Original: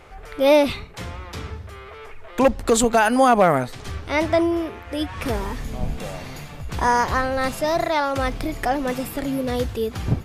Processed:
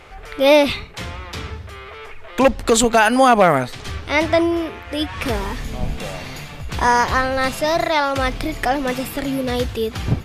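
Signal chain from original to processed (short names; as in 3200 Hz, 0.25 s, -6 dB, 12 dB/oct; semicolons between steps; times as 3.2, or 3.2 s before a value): bell 3100 Hz +5 dB 2 oct; gain +2 dB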